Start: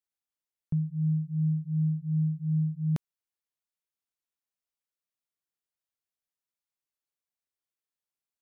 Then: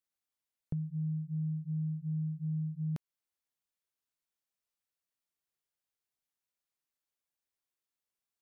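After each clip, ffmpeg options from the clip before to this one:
-af "acompressor=threshold=0.02:ratio=4"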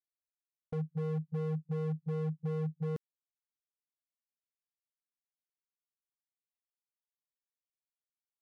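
-af "agate=range=0.0141:threshold=0.0178:ratio=16:detection=peak,aeval=exprs='0.0168*(abs(mod(val(0)/0.0168+3,4)-2)-1)':c=same,volume=2.11"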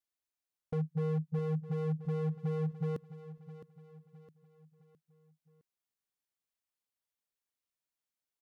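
-af "aecho=1:1:662|1324|1986|2648:0.211|0.093|0.0409|0.018,volume=1.26"

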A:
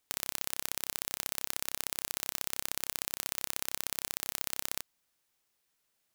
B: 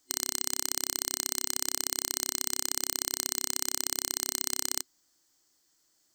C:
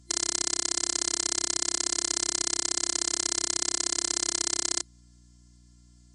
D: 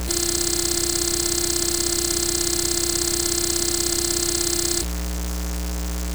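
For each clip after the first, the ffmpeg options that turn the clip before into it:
-filter_complex "[0:a]superequalizer=6b=2.82:12b=0.501:14b=2.51:15b=2.82:16b=0.708,asplit=2[s0][s1];[s1]alimiter=limit=0.299:level=0:latency=1,volume=1[s2];[s0][s2]amix=inputs=2:normalize=0,volume=0.794"
-af "afftfilt=real='hypot(re,im)*cos(PI*b)':imag='0':win_size=512:overlap=0.75,afftfilt=real='re*between(b*sr/4096,120,10000)':imag='im*between(b*sr/4096,120,10000)':win_size=4096:overlap=0.75,aeval=exprs='val(0)+0.000708*(sin(2*PI*60*n/s)+sin(2*PI*2*60*n/s)/2+sin(2*PI*3*60*n/s)/3+sin(2*PI*4*60*n/s)/4+sin(2*PI*5*60*n/s)/5)':c=same,volume=2.51"
-af "aeval=exprs='val(0)+0.5*0.075*sgn(val(0))':c=same,volume=1.33"

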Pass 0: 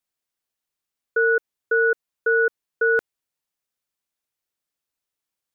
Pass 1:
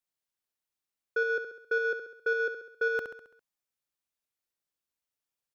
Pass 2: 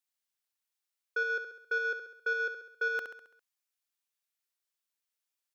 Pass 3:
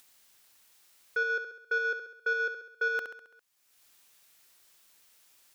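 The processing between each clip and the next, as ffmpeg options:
-af "aeval=exprs='0.266*(cos(1*acos(clip(val(0)/0.266,-1,1)))-cos(1*PI/2))+0.0119*(cos(5*acos(clip(val(0)/0.266,-1,1)))-cos(5*PI/2))':c=same,aecho=1:1:67|134|201|268|335|402:0.398|0.207|0.108|0.056|0.0291|0.0151,volume=0.398"
-af "highpass=f=1400:p=1,volume=1.26"
-af "acompressor=mode=upward:threshold=0.00562:ratio=2.5,volume=1.26"

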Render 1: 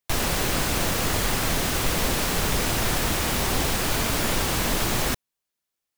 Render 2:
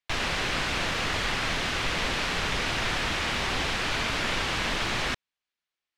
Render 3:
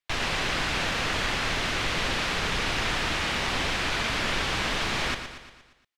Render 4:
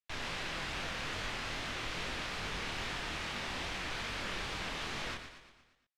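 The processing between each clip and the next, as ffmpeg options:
-af "lowpass=2800,tiltshelf=f=1400:g=-7.5"
-af "aecho=1:1:117|234|351|468|585|702:0.355|0.188|0.0997|0.0528|0.028|0.0148"
-af "flanger=delay=20:depth=7.6:speed=2.4,volume=0.376"

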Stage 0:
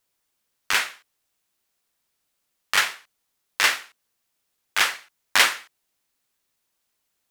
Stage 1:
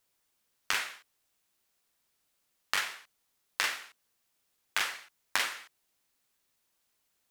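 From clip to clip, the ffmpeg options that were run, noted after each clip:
-af "acompressor=threshold=0.0501:ratio=8,volume=0.891"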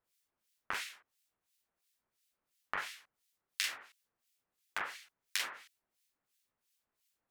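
-filter_complex "[0:a]acrossover=split=1900[s0][s1];[s0]aeval=exprs='val(0)*(1-1/2+1/2*cos(2*PI*2.9*n/s))':c=same[s2];[s1]aeval=exprs='val(0)*(1-1/2-1/2*cos(2*PI*2.9*n/s))':c=same[s3];[s2][s3]amix=inputs=2:normalize=0,volume=0.841"

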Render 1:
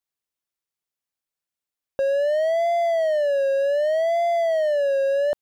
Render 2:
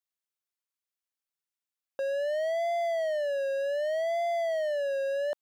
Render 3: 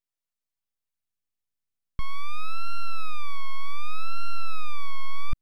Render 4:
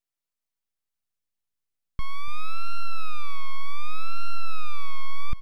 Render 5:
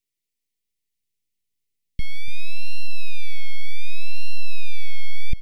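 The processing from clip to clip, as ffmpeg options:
-af "highpass=f=750:p=1,volume=0.596"
-af "aeval=exprs='abs(val(0))':c=same,asubboost=boost=6:cutoff=250"
-af "aecho=1:1:290:0.188"
-af "asuperstop=centerf=960:order=20:qfactor=0.71,volume=1.78"

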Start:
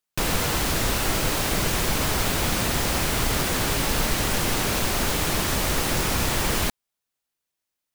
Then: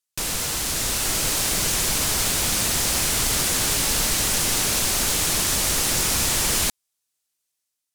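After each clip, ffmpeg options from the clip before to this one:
-af "equalizer=f=8300:t=o:w=2.4:g=12.5,dynaudnorm=f=620:g=3:m=3.76,volume=0.398"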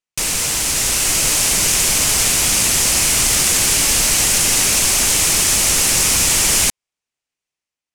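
-af "aexciter=amount=1.9:drive=4.5:freq=2100,adynamicsmooth=sensitivity=5.5:basefreq=2500,volume=1.41"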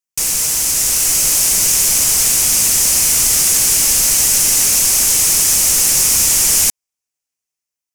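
-af "aexciter=amount=2.7:drive=6.1:freq=5200,volume=0.596"

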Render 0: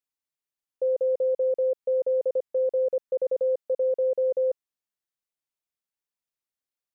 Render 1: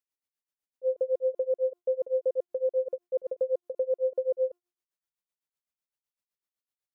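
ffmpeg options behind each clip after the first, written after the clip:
-af "bandreject=f=352.3:t=h:w=4,bandreject=f=704.6:t=h:w=4,bandreject=f=1056.9:t=h:w=4,bandreject=f=1409.2:t=h:w=4,bandreject=f=1761.5:t=h:w=4,bandreject=f=2113.8:t=h:w=4,bandreject=f=2466.1:t=h:w=4,bandreject=f=2818.4:t=h:w=4,bandreject=f=3170.7:t=h:w=4,bandreject=f=3523:t=h:w=4,bandreject=f=3875.3:t=h:w=4,bandreject=f=4227.6:t=h:w=4,bandreject=f=4579.9:t=h:w=4,bandreject=f=4932.2:t=h:w=4,bandreject=f=5284.5:t=h:w=4,bandreject=f=5636.8:t=h:w=4,bandreject=f=5989.1:t=h:w=4,bandreject=f=6341.4:t=h:w=4,bandreject=f=6693.7:t=h:w=4,bandreject=f=7046:t=h:w=4,bandreject=f=7398.3:t=h:w=4,bandreject=f=7750.6:t=h:w=4,bandreject=f=8102.9:t=h:w=4,bandreject=f=8455.2:t=h:w=4,bandreject=f=8807.5:t=h:w=4,bandreject=f=9159.8:t=h:w=4,bandreject=f=9512.1:t=h:w=4,bandreject=f=9864.4:t=h:w=4,bandreject=f=10216.7:t=h:w=4,tremolo=f=7.9:d=0.95"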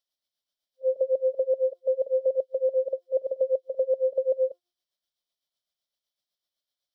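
-af "superequalizer=8b=2.51:13b=3.98:14b=3.16"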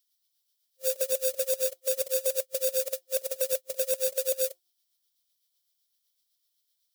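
-af "acrusher=bits=4:mode=log:mix=0:aa=0.000001,crystalizer=i=8.5:c=0,volume=0.422"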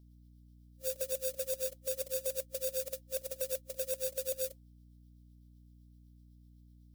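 -af "aeval=exprs='val(0)+0.00355*(sin(2*PI*60*n/s)+sin(2*PI*2*60*n/s)/2+sin(2*PI*3*60*n/s)/3+sin(2*PI*4*60*n/s)/4+sin(2*PI*5*60*n/s)/5)':c=same,volume=0.398"

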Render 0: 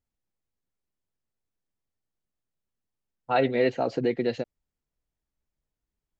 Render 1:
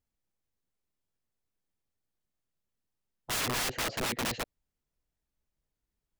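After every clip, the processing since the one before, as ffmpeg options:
-af "aeval=exprs='(mod(21.1*val(0)+1,2)-1)/21.1':c=same"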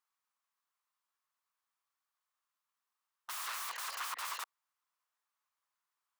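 -af "aeval=exprs='(mod(79.4*val(0)+1,2)-1)/79.4':c=same,highpass=f=1100:t=q:w=4.2"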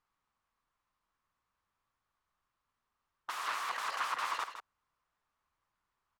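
-af "aemphasis=mode=reproduction:type=riaa,aecho=1:1:161:0.316,volume=2.24"

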